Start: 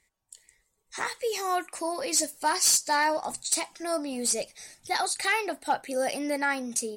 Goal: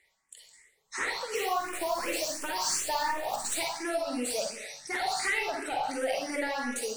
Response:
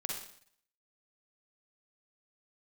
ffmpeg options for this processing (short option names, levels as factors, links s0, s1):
-filter_complex "[0:a]asplit=2[s0][s1];[s1]highpass=f=720:p=1,volume=7.08,asoftclip=type=tanh:threshold=0.211[s2];[s0][s2]amix=inputs=2:normalize=0,lowpass=f=3800:p=1,volume=0.501,acontrast=59,asettb=1/sr,asplit=3[s3][s4][s5];[s3]atrim=end=1.354[s6];[s4]atrim=start=1.35:end=3.59,asetpts=PTS-STARTPTS,afade=t=in:d=0.004:c=qsin,afade=t=out:st=2.236:d=0.004:c=qsin,acrusher=bits=5:dc=4:mix=0:aa=0.000001[s7];[s5]atrim=start=3.586[s8];[s6][s7]acrossfade=d=0.004:c1=hsin:c2=qsin[s9];[s9][s8]acrossfade=d=0.004:c1=qsin:c2=hsin[s10];[1:a]atrim=start_sample=2205[s11];[s10][s11]afir=irnorm=-1:irlink=0,acompressor=threshold=0.158:ratio=6,asplit=2[s12][s13];[s13]afreqshift=2.8[s14];[s12][s14]amix=inputs=2:normalize=1,volume=0.398"